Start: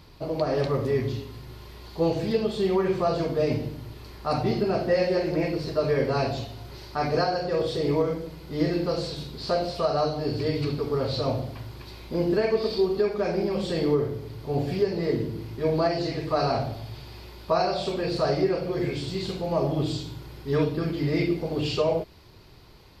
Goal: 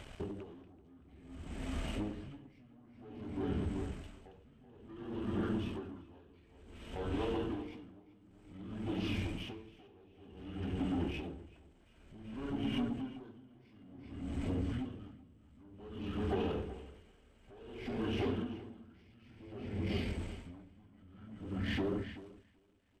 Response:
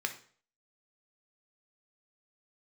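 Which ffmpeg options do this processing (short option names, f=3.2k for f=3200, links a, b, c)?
-filter_complex "[0:a]bandreject=f=4.3k:w=14,aeval=exprs='sgn(val(0))*max(abs(val(0))-0.002,0)':c=same,acompressor=threshold=-38dB:ratio=5,asetrate=27781,aresample=44100,atempo=1.5874,asoftclip=type=tanh:threshold=-37.5dB,asplit=2[a][b];[b]adelay=383,lowpass=f=4.2k:p=1,volume=-5dB,asplit=2[c][d];[d]adelay=383,lowpass=f=4.2k:p=1,volume=0.53,asplit=2[e][f];[f]adelay=383,lowpass=f=4.2k:p=1,volume=0.53,asplit=2[g][h];[h]adelay=383,lowpass=f=4.2k:p=1,volume=0.53,asplit=2[i][j];[j]adelay=383,lowpass=f=4.2k:p=1,volume=0.53,asplit=2[k][l];[l]adelay=383,lowpass=f=4.2k:p=1,volume=0.53,asplit=2[m][n];[n]adelay=383,lowpass=f=4.2k:p=1,volume=0.53[o];[c][e][g][i][k][m][o]amix=inputs=7:normalize=0[p];[a][p]amix=inputs=2:normalize=0,aeval=exprs='val(0)*pow(10,-27*(0.5-0.5*cos(2*PI*0.55*n/s))/20)':c=same,volume=7.5dB"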